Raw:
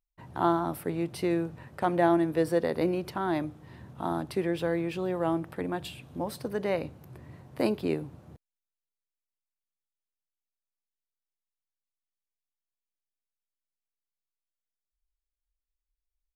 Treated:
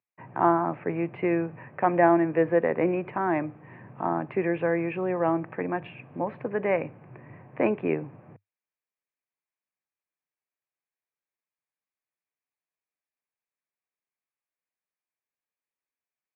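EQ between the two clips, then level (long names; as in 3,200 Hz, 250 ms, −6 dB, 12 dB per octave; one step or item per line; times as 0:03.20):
Chebyshev band-pass filter 100–2,500 Hz, order 5
low-shelf EQ 490 Hz −7 dB
notch filter 1,400 Hz, Q 8.8
+7.5 dB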